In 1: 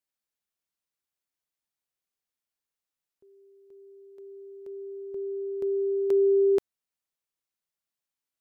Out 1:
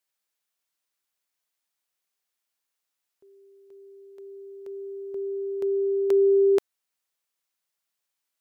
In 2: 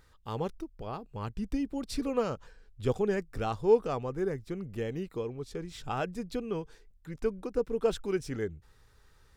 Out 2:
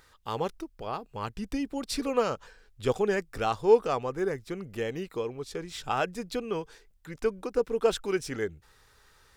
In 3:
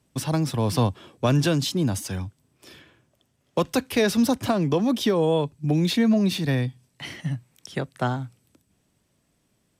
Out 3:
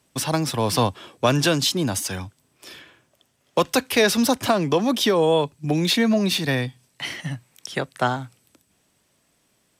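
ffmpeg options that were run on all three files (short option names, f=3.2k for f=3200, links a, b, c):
-af "lowshelf=f=340:g=-11,volume=7dB"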